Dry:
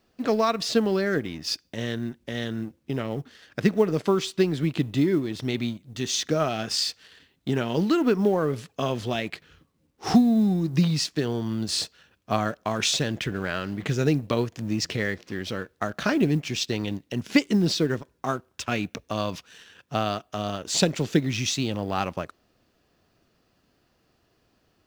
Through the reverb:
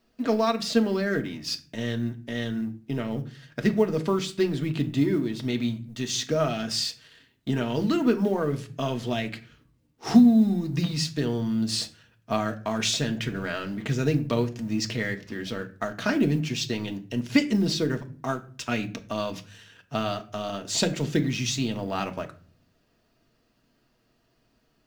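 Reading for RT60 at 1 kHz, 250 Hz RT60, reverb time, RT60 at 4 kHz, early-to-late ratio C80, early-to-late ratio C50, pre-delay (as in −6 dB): 0.40 s, 0.70 s, 0.40 s, 0.30 s, 20.5 dB, 16.5 dB, 3 ms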